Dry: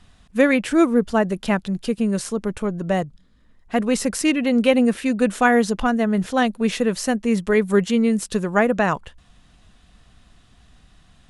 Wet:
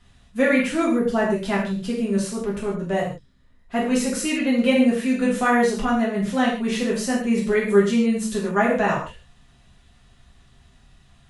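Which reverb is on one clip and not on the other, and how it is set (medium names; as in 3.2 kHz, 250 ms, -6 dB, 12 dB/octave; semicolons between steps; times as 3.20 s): gated-style reverb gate 180 ms falling, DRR -5.5 dB; trim -7.5 dB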